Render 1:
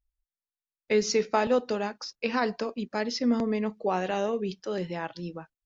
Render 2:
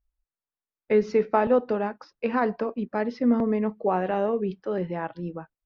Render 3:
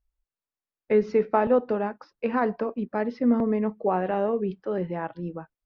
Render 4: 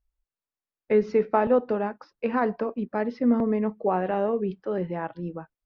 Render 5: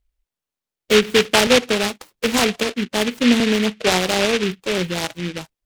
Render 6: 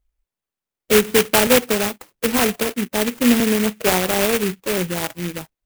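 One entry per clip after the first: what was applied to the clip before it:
LPF 1600 Hz 12 dB/oct; gain +3.5 dB
high shelf 4400 Hz -9.5 dB
nothing audible
noise-modulated delay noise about 2400 Hz, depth 0.21 ms; gain +6.5 dB
clock jitter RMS 0.058 ms

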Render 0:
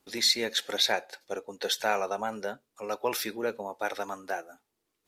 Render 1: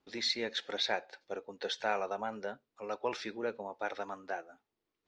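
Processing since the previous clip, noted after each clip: Bessel low-pass 3900 Hz, order 6; gain -5 dB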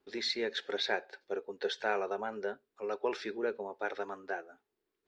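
thirty-one-band EQ 125 Hz -9 dB, 400 Hz +11 dB, 1600 Hz +5 dB, 6300 Hz -3 dB; gain -1.5 dB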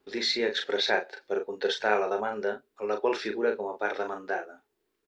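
doubler 38 ms -6 dB; gain +6 dB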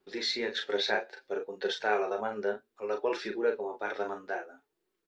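flange 0.61 Hz, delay 5.2 ms, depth 5 ms, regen +43%

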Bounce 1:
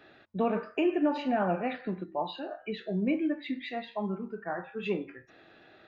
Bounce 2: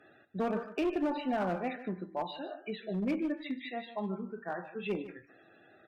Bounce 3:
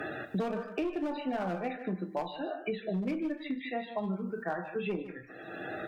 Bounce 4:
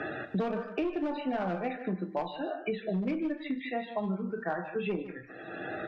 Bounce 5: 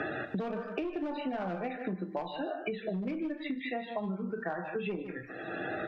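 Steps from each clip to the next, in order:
loudest bins only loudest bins 64; one-sided clip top -26 dBFS, bottom -21 dBFS; echo 0.151 s -14.5 dB; gain -3 dB
on a send at -8.5 dB: reverb, pre-delay 6 ms; on the sum: three-band squash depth 100%; gain -1.5 dB
LPF 4400 Hz 12 dB/oct; gain +1.5 dB
compressor 4:1, threshold -36 dBFS, peak gain reduction 9 dB; gain +3.5 dB

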